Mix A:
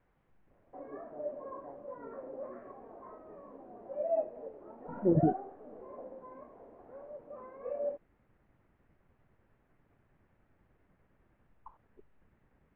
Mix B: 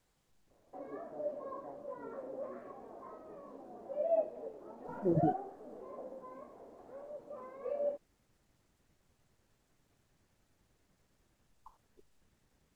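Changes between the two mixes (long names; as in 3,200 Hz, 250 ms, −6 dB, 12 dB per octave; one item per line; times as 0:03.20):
speech −4.5 dB
master: remove low-pass filter 2,200 Hz 24 dB per octave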